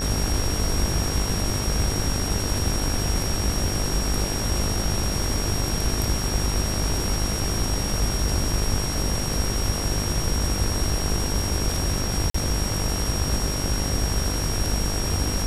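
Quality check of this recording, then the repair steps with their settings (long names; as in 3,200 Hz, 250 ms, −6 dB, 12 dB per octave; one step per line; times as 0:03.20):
mains buzz 50 Hz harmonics 35 −29 dBFS
whistle 5,600 Hz −30 dBFS
0:12.30–0:12.34: drop-out 44 ms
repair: notch filter 5,600 Hz, Q 30
hum removal 50 Hz, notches 35
repair the gap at 0:12.30, 44 ms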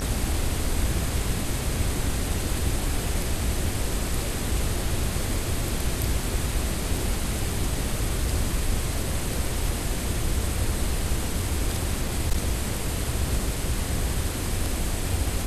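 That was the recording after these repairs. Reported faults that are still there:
none of them is left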